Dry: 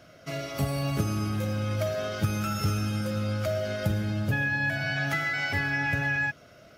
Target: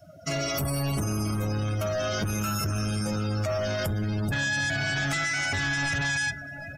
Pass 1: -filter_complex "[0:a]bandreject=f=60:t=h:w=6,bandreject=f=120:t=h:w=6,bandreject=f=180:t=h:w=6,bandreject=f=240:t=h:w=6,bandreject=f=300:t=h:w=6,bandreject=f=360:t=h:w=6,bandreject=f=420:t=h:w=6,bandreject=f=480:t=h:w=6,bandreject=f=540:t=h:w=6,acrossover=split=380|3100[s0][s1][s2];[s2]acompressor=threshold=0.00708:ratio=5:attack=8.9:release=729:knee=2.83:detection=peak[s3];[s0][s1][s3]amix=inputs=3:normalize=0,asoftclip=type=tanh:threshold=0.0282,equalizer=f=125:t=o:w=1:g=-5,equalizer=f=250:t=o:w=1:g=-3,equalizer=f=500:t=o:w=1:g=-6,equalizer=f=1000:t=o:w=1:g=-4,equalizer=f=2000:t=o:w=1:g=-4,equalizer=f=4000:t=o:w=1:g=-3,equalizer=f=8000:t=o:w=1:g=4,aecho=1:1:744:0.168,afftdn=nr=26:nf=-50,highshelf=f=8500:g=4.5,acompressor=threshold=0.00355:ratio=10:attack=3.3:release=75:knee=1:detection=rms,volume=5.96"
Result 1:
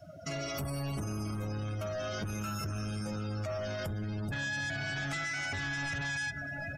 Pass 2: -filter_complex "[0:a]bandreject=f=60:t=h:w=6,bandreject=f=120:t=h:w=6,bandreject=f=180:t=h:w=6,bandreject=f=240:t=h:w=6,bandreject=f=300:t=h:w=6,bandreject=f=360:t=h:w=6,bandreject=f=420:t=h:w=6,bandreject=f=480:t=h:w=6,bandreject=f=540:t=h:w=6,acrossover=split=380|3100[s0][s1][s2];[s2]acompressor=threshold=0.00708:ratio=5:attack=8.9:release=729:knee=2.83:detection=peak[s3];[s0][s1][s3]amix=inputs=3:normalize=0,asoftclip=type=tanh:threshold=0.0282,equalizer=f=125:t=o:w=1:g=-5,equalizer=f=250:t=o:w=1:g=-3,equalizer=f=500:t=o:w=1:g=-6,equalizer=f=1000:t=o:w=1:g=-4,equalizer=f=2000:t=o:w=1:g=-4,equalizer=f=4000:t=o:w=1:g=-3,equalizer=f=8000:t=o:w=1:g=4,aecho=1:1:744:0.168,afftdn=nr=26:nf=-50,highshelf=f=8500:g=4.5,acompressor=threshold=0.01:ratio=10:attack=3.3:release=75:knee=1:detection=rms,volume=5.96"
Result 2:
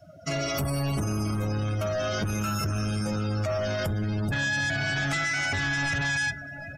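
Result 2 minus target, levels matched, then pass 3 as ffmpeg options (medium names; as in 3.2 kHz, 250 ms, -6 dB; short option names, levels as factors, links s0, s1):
8 kHz band -2.5 dB
-filter_complex "[0:a]bandreject=f=60:t=h:w=6,bandreject=f=120:t=h:w=6,bandreject=f=180:t=h:w=6,bandreject=f=240:t=h:w=6,bandreject=f=300:t=h:w=6,bandreject=f=360:t=h:w=6,bandreject=f=420:t=h:w=6,bandreject=f=480:t=h:w=6,bandreject=f=540:t=h:w=6,acrossover=split=380|3100[s0][s1][s2];[s2]acompressor=threshold=0.00708:ratio=5:attack=8.9:release=729:knee=2.83:detection=peak[s3];[s0][s1][s3]amix=inputs=3:normalize=0,asoftclip=type=tanh:threshold=0.0282,equalizer=f=125:t=o:w=1:g=-5,equalizer=f=250:t=o:w=1:g=-3,equalizer=f=500:t=o:w=1:g=-6,equalizer=f=1000:t=o:w=1:g=-4,equalizer=f=2000:t=o:w=1:g=-4,equalizer=f=4000:t=o:w=1:g=-3,equalizer=f=8000:t=o:w=1:g=4,aecho=1:1:744:0.168,afftdn=nr=26:nf=-50,highshelf=f=8500:g=13.5,acompressor=threshold=0.01:ratio=10:attack=3.3:release=75:knee=1:detection=rms,volume=5.96"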